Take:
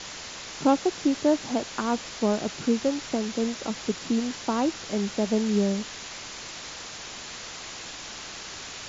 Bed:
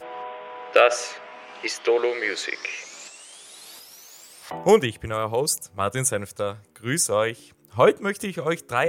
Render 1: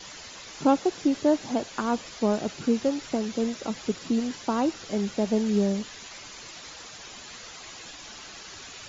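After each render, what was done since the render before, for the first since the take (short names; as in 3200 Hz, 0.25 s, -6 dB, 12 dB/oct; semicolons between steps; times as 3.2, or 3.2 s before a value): denoiser 9 dB, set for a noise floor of -40 dBFS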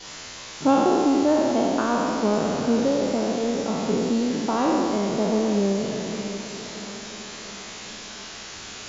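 spectral trails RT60 2.48 s; diffused feedback echo 0.726 s, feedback 46%, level -12 dB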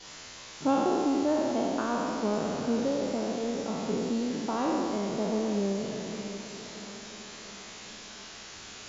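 gain -7 dB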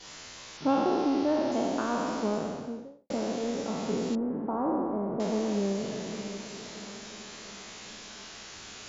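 0.57–1.52 steep low-pass 5800 Hz 48 dB/oct; 2.16–3.1 studio fade out; 4.15–5.2 LPF 1200 Hz 24 dB/oct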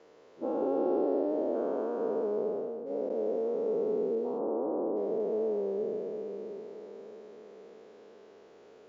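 spectral dilation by 0.48 s; band-pass 450 Hz, Q 4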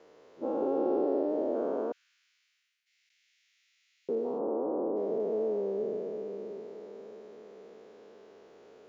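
1.92–4.09 steep high-pass 2000 Hz 48 dB/oct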